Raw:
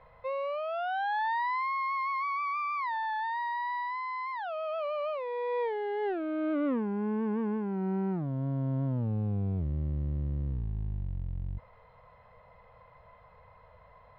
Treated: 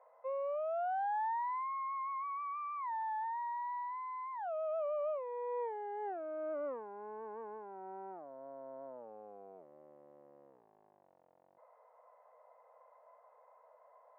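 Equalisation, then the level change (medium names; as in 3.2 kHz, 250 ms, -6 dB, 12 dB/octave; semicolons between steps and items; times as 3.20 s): ladder high-pass 500 Hz, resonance 40%; low-pass 1.2 kHz 12 dB/octave; distance through air 87 m; +1.5 dB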